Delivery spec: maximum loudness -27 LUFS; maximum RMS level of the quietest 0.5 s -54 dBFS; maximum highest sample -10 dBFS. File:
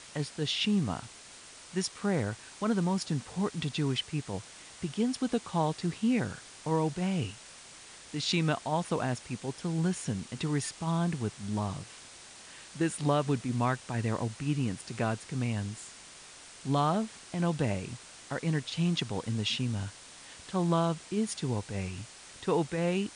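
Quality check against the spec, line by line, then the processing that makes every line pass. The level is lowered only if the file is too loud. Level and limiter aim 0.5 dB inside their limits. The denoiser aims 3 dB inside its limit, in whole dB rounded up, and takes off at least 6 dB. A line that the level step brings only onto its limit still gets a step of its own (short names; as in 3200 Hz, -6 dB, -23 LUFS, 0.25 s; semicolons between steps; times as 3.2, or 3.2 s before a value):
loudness -32.0 LUFS: OK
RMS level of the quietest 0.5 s -51 dBFS: fail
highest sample -15.5 dBFS: OK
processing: denoiser 6 dB, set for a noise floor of -51 dBFS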